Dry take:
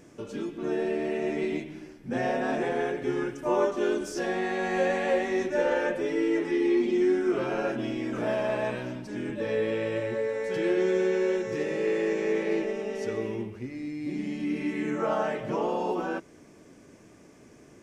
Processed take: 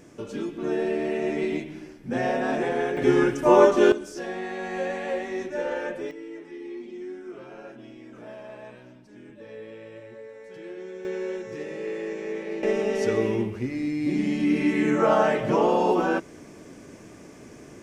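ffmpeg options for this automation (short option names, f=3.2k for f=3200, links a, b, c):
-af "asetnsamples=n=441:p=0,asendcmd='2.97 volume volume 9.5dB;3.92 volume volume -3.5dB;6.11 volume volume -13.5dB;11.05 volume volume -5dB;12.63 volume volume 7.5dB',volume=2.5dB"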